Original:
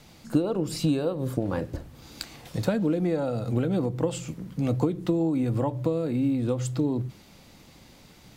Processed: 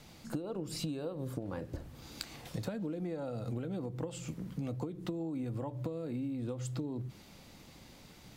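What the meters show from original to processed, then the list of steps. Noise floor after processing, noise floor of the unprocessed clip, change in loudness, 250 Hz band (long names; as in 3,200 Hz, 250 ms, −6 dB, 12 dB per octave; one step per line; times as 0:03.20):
−56 dBFS, −53 dBFS, −12.0 dB, −12.5 dB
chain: downward compressor, threshold −32 dBFS, peak gain reduction 14 dB
level −3 dB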